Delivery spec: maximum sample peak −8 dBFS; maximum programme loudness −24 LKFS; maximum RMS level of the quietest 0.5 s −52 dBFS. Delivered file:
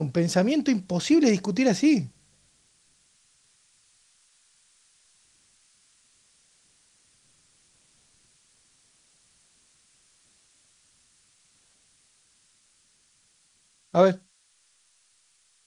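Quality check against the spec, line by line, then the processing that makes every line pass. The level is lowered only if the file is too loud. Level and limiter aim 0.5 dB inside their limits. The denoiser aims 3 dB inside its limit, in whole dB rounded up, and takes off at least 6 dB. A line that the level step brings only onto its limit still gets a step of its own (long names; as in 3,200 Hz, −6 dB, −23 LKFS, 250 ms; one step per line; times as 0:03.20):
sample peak −6.0 dBFS: out of spec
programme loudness −23.0 LKFS: out of spec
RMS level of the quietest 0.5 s −65 dBFS: in spec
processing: level −1.5 dB
brickwall limiter −8.5 dBFS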